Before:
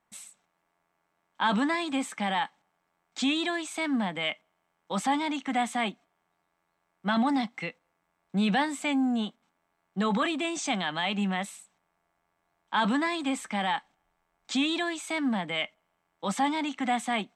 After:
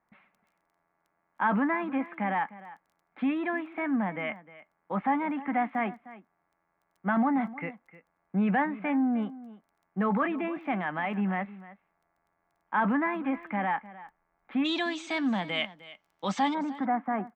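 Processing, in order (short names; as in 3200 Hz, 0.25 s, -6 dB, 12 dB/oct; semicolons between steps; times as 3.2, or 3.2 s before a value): steep low-pass 2200 Hz 36 dB/oct, from 14.64 s 6400 Hz, from 16.53 s 1700 Hz; crackle 10/s -53 dBFS; echo 0.306 s -17.5 dB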